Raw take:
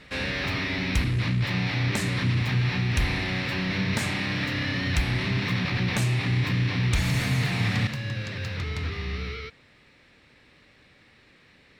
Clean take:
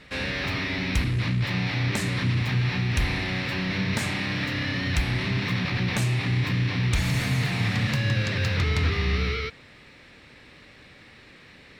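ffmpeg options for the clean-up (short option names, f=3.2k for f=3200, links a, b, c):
-af "asetnsamples=n=441:p=0,asendcmd='7.87 volume volume 7dB',volume=0dB"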